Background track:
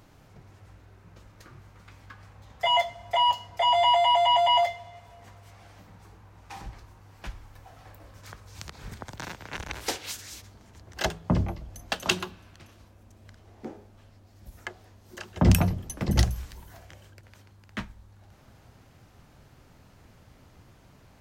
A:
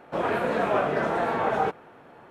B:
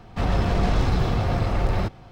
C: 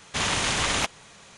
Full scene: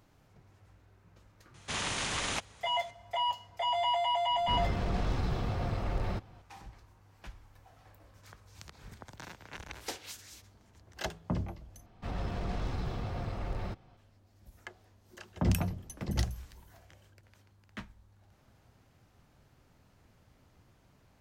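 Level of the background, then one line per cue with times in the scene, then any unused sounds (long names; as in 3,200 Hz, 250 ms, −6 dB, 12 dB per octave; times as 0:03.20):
background track −9 dB
0:01.54: mix in C −9 dB
0:04.31: mix in B −10.5 dB
0:11.86: overwrite with B −14 dB
not used: A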